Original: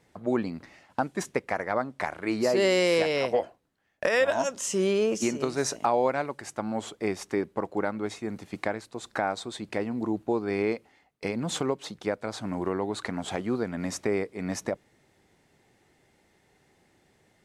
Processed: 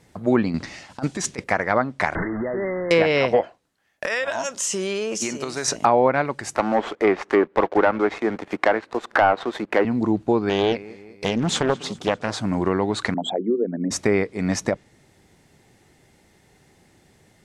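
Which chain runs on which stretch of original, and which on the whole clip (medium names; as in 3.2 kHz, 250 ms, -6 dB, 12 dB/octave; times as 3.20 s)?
0.54–1.44 s: treble shelf 3.7 kHz +11.5 dB + compressor with a negative ratio -31 dBFS, ratio -0.5 + low-pass 6.4 kHz
2.15–2.91 s: one-bit delta coder 32 kbps, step -26.5 dBFS + compression 4:1, threshold -31 dBFS + brick-wall FIR low-pass 2.1 kHz
3.41–5.68 s: bass shelf 340 Hz -11 dB + compression, threshold -29 dBFS
6.55–9.85 s: three-band isolator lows -23 dB, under 290 Hz, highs -24 dB, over 2.3 kHz + waveshaping leveller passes 2 + upward compressor, threshold -31 dBFS
10.49–12.39 s: feedback delay 198 ms, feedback 55%, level -19.5 dB + loudspeaker Doppler distortion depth 0.45 ms
13.14–13.91 s: resonances exaggerated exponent 3 + high-pass 190 Hz 24 dB/octave + hum notches 50/100/150/200/250/300 Hz
whole clip: dynamic bell 1.9 kHz, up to +4 dB, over -41 dBFS, Q 0.82; low-pass that closes with the level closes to 1.9 kHz, closed at -18 dBFS; tone controls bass +5 dB, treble +4 dB; trim +6 dB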